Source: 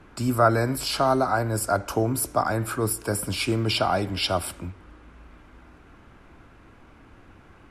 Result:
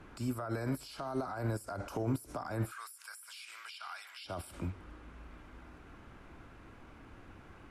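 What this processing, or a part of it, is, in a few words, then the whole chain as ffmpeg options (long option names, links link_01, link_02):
de-esser from a sidechain: -filter_complex "[0:a]asplit=3[link_01][link_02][link_03];[link_01]afade=type=out:start_time=2.7:duration=0.02[link_04];[link_02]highpass=frequency=1300:width=0.5412,highpass=frequency=1300:width=1.3066,afade=type=in:start_time=2.7:duration=0.02,afade=type=out:start_time=4.24:duration=0.02[link_05];[link_03]afade=type=in:start_time=4.24:duration=0.02[link_06];[link_04][link_05][link_06]amix=inputs=3:normalize=0,asplit=2[link_07][link_08];[link_08]highpass=frequency=4500:poles=1,apad=whole_len=339770[link_09];[link_07][link_09]sidechaincompress=threshold=-47dB:ratio=12:attack=2.8:release=42,volume=-3dB"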